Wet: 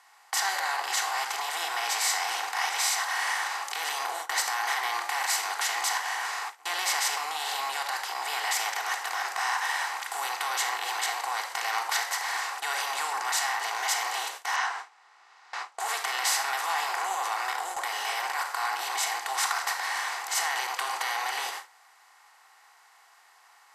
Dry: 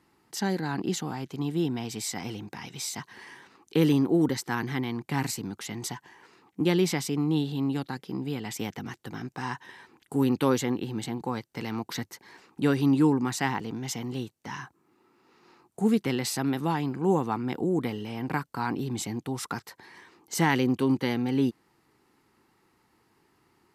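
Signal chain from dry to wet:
compressor on every frequency bin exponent 0.4
brickwall limiter −14.5 dBFS, peak gain reduction 10.5 dB
Butterworth high-pass 720 Hz 36 dB per octave
rectangular room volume 2,700 cubic metres, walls furnished, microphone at 3.4 metres
noise gate with hold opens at −22 dBFS
0:14.56–0:15.80: low-pass filter 6,000 Hz 12 dB per octave

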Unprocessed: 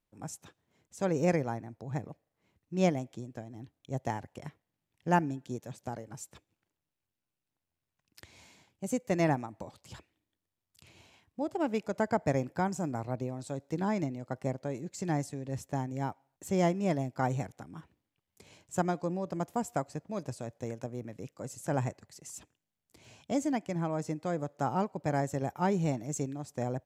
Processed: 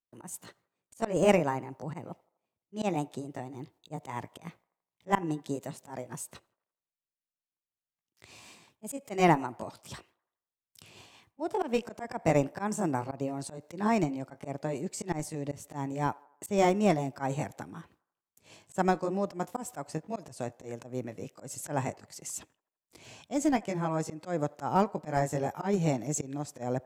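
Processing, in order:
pitch glide at a constant tempo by +2.5 semitones ending unshifted
noise gate with hold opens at −56 dBFS
low-shelf EQ 160 Hz −6.5 dB
volume swells 141 ms
in parallel at −11 dB: comparator with hysteresis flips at −29 dBFS
on the sum: delay with a band-pass on its return 83 ms, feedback 49%, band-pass 840 Hz, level −24 dB
level +7 dB

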